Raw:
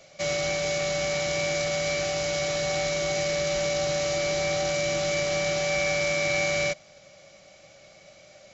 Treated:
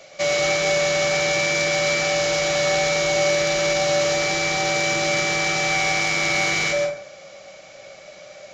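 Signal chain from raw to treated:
bass and treble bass −9 dB, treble −3 dB
soft clipping −17.5 dBFS, distortion −26 dB
dense smooth reverb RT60 0.61 s, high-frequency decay 0.5×, pre-delay 105 ms, DRR 2 dB
level +8 dB

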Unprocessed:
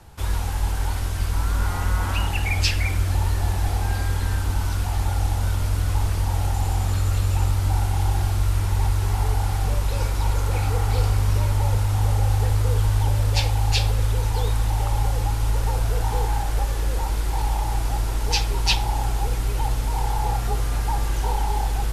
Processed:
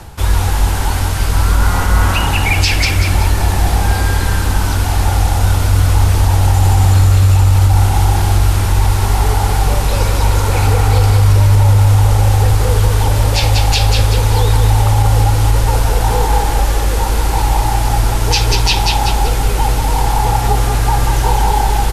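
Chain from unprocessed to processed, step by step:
reversed playback
upward compression, threshold −25 dBFS
reversed playback
repeating echo 189 ms, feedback 40%, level −5.5 dB
boost into a limiter +12 dB
level −1 dB

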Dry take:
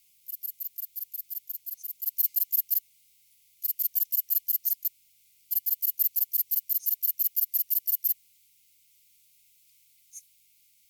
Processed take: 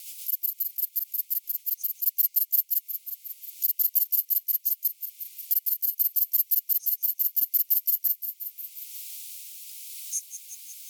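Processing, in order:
Chebyshev high-pass with heavy ripple 630 Hz, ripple 6 dB
high-shelf EQ 2,900 Hz +12 dB
rotating-speaker cabinet horn 8 Hz, later 0.8 Hz, at 0:02.08
floating-point word with a short mantissa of 8 bits
on a send: delay with a high-pass on its return 179 ms, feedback 46%, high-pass 2,100 Hz, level −12 dB
on the sum: multiband upward and downward compressor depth 70%

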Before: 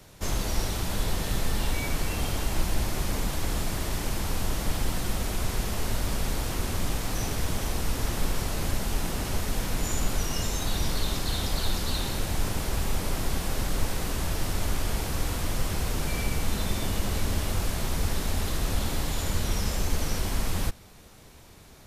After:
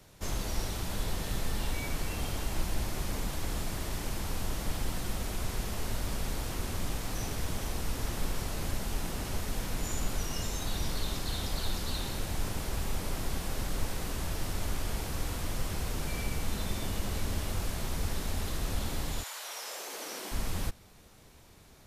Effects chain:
0:19.22–0:20.31: high-pass filter 820 Hz → 250 Hz 24 dB per octave
level −5.5 dB

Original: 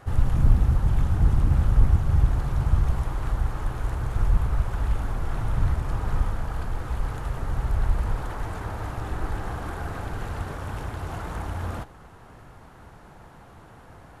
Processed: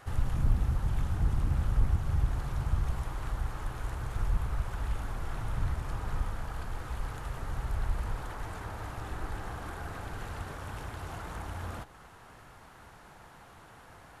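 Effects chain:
one half of a high-frequency compander encoder only
level −8.5 dB

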